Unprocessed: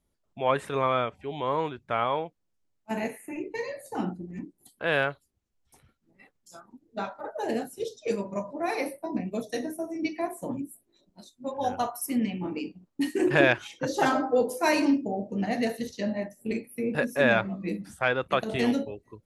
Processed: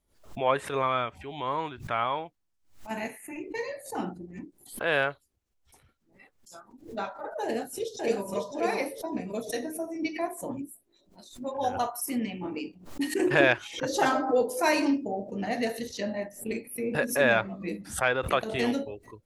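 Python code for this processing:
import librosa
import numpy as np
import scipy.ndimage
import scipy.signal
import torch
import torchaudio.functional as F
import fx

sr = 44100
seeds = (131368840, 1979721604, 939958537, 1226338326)

y = fx.peak_eq(x, sr, hz=480.0, db=-7.0, octaves=0.71, at=(0.82, 3.48))
y = fx.echo_throw(y, sr, start_s=7.44, length_s=0.85, ms=550, feedback_pct=20, wet_db=-3.0)
y = fx.peak_eq(y, sr, hz=180.0, db=-5.5, octaves=1.2)
y = fx.pre_swell(y, sr, db_per_s=130.0)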